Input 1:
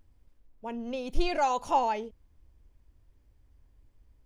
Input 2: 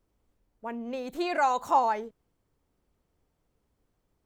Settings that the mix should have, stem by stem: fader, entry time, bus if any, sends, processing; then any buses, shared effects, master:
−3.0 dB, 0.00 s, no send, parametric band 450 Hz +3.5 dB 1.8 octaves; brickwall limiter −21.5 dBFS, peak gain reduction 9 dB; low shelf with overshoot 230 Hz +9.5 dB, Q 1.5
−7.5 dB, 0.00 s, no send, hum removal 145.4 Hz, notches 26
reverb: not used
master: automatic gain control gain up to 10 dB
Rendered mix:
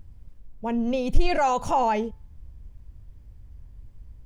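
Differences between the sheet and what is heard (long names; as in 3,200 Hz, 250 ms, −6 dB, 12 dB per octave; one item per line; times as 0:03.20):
stem 1 −3.0 dB → +6.0 dB
master: missing automatic gain control gain up to 10 dB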